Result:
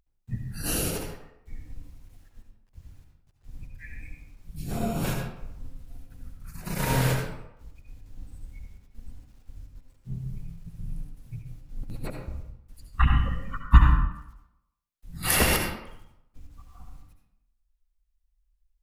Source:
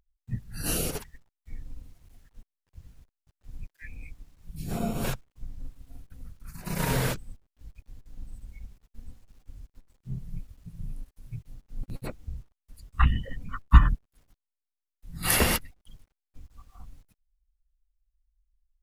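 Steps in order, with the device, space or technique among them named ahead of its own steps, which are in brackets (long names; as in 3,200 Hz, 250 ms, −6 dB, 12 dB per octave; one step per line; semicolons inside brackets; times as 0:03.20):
bathroom (convolution reverb RT60 0.85 s, pre-delay 64 ms, DRR 2 dB)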